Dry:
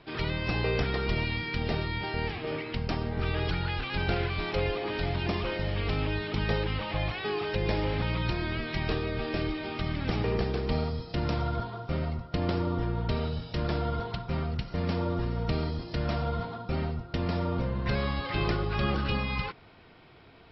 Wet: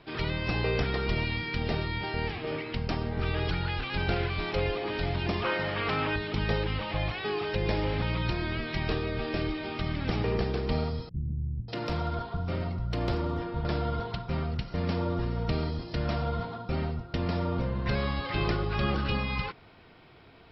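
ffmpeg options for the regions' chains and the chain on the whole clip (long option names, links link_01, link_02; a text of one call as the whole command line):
ffmpeg -i in.wav -filter_complex "[0:a]asettb=1/sr,asplit=3[link_01][link_02][link_03];[link_01]atrim=end=5.424[link_04];[link_02]atrim=start=5.42:end=6.16,asetpts=PTS-STARTPTS,afade=type=in:duration=0.004:curve=qsin,afade=type=out:start_time=0.736:duration=0.004:curve=qsin,highpass=130,equalizer=frequency=1300:width_type=o:width=1.6:gain=9.5[link_05];[link_03]atrim=start=6.156[link_06];[link_04][link_05]acrossfade=duration=0.004:curve1=hsin:curve2=qsin[link_07];[link_07][link_06]acrossfade=duration=0.004:curve1=qsin:curve2=hsin,asettb=1/sr,asplit=3[link_08][link_09][link_10];[link_08]atrim=end=11.094[link_11];[link_09]atrim=start=11.09:end=13.65,asetpts=PTS-STARTPTS,afade=type=in:duration=0.004:curve=qsin,afade=type=out:start_time=2.556:duration=0.004:curve=qsin,volume=20.5dB,asoftclip=hard,volume=-20.5dB,acrossover=split=200[link_12][link_13];[link_13]adelay=590[link_14];[link_12][link_14]amix=inputs=2:normalize=0,atrim=end_sample=112896[link_15];[link_10]atrim=start=13.646[link_16];[link_11][link_15]acrossfade=duration=0.004:curve1=hsin:curve2=qsin[link_17];[link_17][link_16]acrossfade=duration=0.004:curve1=qsin:curve2=hsin" out.wav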